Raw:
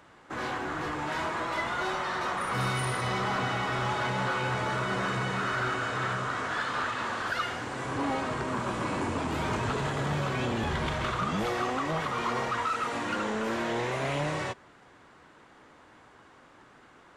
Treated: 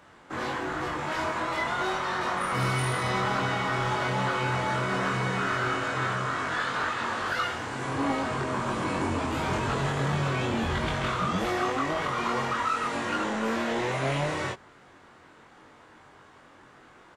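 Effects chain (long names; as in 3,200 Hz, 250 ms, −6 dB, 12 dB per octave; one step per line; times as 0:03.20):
double-tracking delay 22 ms −2 dB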